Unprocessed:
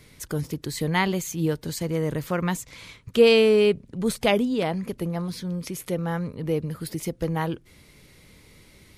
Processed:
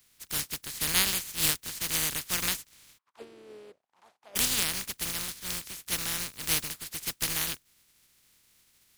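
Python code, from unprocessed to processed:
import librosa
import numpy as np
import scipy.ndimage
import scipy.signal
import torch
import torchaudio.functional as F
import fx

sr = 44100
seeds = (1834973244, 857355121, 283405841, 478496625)

y = fx.spec_flatten(x, sr, power=0.18)
y = fx.peak_eq(y, sr, hz=630.0, db=-9.0, octaves=2.3)
y = fx.auto_wah(y, sr, base_hz=380.0, top_hz=1100.0, q=5.2, full_db=-13.5, direction='down', at=(2.97, 4.35), fade=0.02)
y = fx.upward_expand(y, sr, threshold_db=-45.0, expansion=1.5)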